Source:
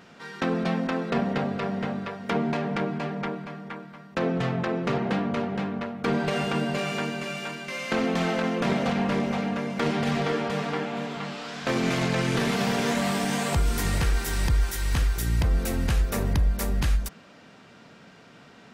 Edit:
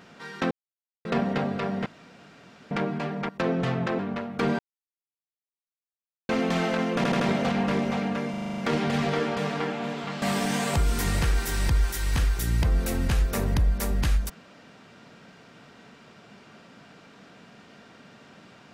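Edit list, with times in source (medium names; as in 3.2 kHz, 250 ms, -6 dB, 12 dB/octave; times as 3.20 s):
0.51–1.05 s: mute
1.86–2.71 s: room tone
3.29–4.06 s: delete
4.76–5.64 s: delete
6.24–7.94 s: mute
8.61 s: stutter 0.08 s, 4 plays
9.71 s: stutter 0.04 s, 8 plays
11.35–13.01 s: delete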